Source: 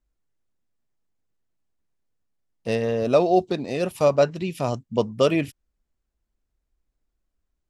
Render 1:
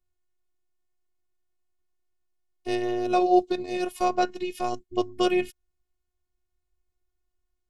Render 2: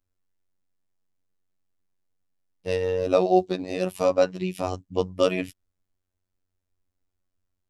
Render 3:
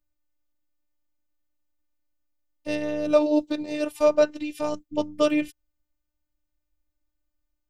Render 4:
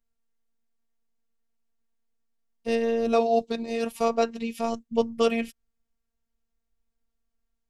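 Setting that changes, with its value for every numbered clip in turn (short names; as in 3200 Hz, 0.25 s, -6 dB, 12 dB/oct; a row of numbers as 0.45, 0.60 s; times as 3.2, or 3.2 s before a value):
robotiser, frequency: 360, 92, 300, 230 Hz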